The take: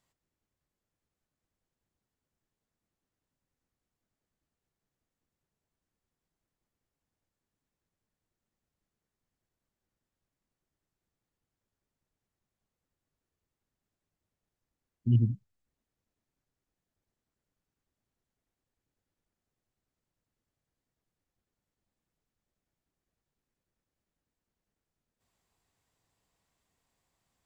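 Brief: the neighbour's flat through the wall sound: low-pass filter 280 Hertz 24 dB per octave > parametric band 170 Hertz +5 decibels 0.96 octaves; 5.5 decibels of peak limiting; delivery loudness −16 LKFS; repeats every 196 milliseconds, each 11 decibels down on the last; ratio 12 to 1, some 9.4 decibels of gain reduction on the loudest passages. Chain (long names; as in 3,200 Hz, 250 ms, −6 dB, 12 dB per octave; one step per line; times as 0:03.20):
downward compressor 12 to 1, threshold −28 dBFS
brickwall limiter −27 dBFS
low-pass filter 280 Hz 24 dB per octave
parametric band 170 Hz +5 dB 0.96 octaves
repeating echo 196 ms, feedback 28%, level −11 dB
level +23 dB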